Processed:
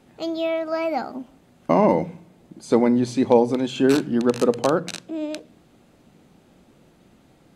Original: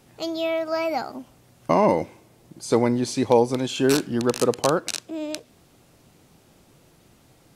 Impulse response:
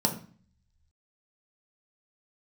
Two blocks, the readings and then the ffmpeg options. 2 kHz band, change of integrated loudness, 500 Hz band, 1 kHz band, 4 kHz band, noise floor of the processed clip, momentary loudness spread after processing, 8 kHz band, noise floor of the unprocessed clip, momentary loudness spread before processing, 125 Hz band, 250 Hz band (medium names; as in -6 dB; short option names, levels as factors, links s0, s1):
-0.5 dB, +1.5 dB, +1.5 dB, 0.0 dB, -3.5 dB, -56 dBFS, 14 LU, -6.5 dB, -57 dBFS, 17 LU, -0.5 dB, +3.5 dB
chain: -filter_complex "[0:a]highshelf=f=6400:g=-11.5,bandreject=f=5600:w=14,asplit=2[s0][s1];[1:a]atrim=start_sample=2205,lowshelf=f=490:g=9[s2];[s1][s2]afir=irnorm=-1:irlink=0,volume=0.0398[s3];[s0][s3]amix=inputs=2:normalize=0"